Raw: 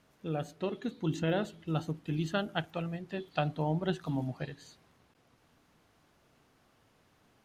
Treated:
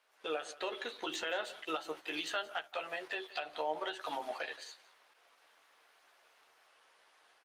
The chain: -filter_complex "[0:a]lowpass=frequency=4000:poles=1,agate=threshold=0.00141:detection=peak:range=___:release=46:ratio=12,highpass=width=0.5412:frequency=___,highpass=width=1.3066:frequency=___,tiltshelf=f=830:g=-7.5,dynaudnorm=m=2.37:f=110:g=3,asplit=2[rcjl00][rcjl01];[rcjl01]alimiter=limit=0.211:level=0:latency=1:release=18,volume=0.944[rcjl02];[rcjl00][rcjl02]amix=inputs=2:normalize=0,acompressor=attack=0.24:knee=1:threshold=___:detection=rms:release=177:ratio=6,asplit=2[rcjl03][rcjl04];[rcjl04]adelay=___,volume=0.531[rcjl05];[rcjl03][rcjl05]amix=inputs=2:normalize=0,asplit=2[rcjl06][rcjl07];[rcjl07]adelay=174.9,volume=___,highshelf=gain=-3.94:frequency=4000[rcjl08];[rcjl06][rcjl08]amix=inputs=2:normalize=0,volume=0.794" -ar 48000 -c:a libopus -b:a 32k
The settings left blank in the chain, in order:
0.355, 430, 430, 0.0398, 13, 0.141